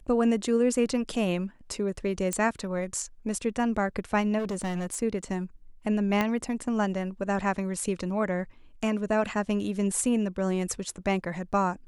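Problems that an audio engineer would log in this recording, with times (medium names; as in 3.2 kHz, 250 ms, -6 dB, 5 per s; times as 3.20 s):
2.33 s: pop -14 dBFS
4.38–4.97 s: clipped -27 dBFS
6.21 s: pop -12 dBFS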